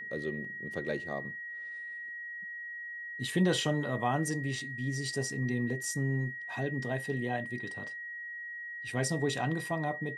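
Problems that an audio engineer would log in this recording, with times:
whistle 1,900 Hz −39 dBFS

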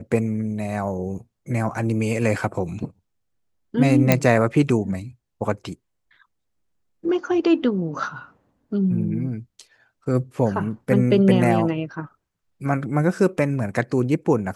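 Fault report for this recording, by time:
0:04.12: click −1 dBFS

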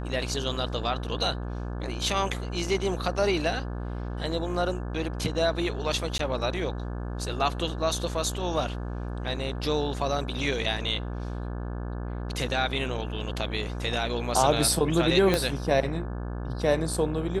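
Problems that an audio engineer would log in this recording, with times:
mains buzz 60 Hz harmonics 29 −33 dBFS
0:06.18–0:06.19: drop-out 13 ms
0:15.34: click −9 dBFS

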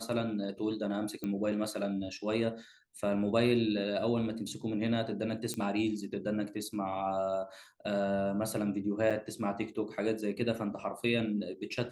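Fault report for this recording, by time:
0:01.24: click −24 dBFS
0:05.54: click −20 dBFS
0:09.10–0:09.11: drop-out 6.5 ms

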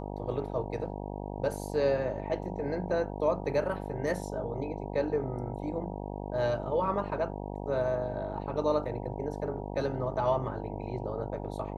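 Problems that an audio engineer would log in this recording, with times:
mains buzz 50 Hz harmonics 19 −38 dBFS

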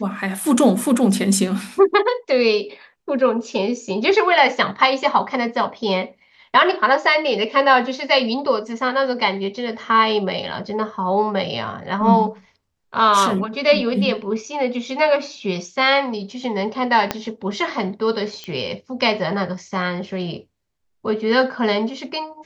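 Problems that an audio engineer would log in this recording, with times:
0:17.11: click −5 dBFS
0:18.44: click −17 dBFS

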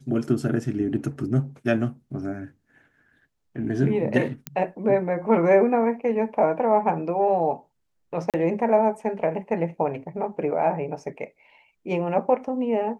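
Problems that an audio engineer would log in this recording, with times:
0:04.47: click −12 dBFS
0:08.30–0:08.34: drop-out 37 ms

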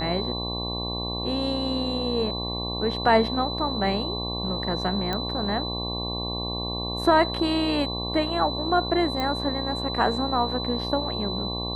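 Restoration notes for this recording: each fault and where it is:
mains buzz 60 Hz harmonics 19 −32 dBFS
whistle 4,000 Hz −31 dBFS
0:05.13: click −14 dBFS
0:09.20: click −15 dBFS

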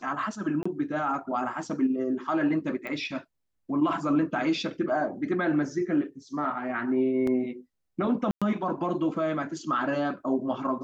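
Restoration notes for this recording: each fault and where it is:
0:00.63–0:00.66: drop-out 25 ms
0:02.87: click −24 dBFS
0:07.27: drop-out 3.7 ms
0:08.31–0:08.42: drop-out 106 ms

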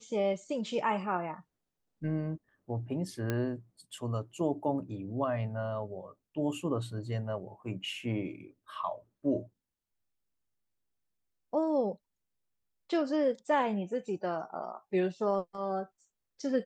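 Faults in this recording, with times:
0:03.30: click −18 dBFS

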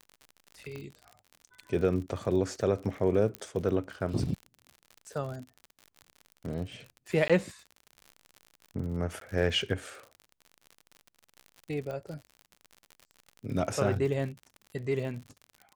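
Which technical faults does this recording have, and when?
surface crackle 59 per second −38 dBFS
0:00.76: click −28 dBFS
0:03.35: click −19 dBFS
0:07.28–0:07.30: drop-out 16 ms
0:09.20–0:09.21: drop-out 13 ms
0:11.91: click −27 dBFS

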